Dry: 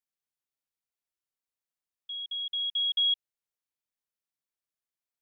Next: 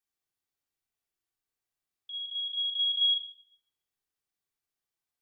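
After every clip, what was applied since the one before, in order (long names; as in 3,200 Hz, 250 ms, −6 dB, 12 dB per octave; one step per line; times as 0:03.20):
rectangular room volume 3,600 cubic metres, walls furnished, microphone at 3.6 metres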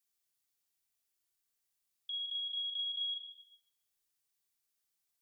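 high-shelf EQ 3,100 Hz +12 dB
downward compressor 6 to 1, threshold −33 dBFS, peak gain reduction 15.5 dB
level −4 dB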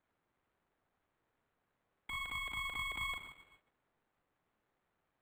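running median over 15 samples
linearly interpolated sample-rate reduction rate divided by 8×
level +12.5 dB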